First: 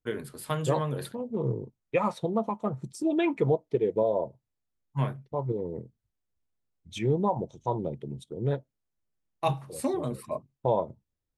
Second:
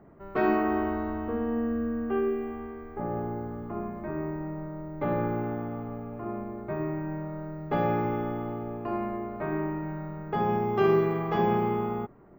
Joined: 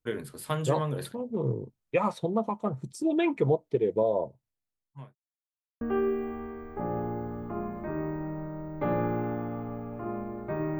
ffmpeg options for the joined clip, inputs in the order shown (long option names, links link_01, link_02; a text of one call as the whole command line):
ffmpeg -i cue0.wav -i cue1.wav -filter_complex "[0:a]apad=whole_dur=10.79,atrim=end=10.79,asplit=2[link_01][link_02];[link_01]atrim=end=5.15,asetpts=PTS-STARTPTS,afade=type=out:start_time=4.16:duration=0.99[link_03];[link_02]atrim=start=5.15:end=5.81,asetpts=PTS-STARTPTS,volume=0[link_04];[1:a]atrim=start=2.01:end=6.99,asetpts=PTS-STARTPTS,afade=type=in:duration=0.004:curve=hsin[link_05];[link_03][link_04][link_05]concat=n=3:v=0:a=1" out.wav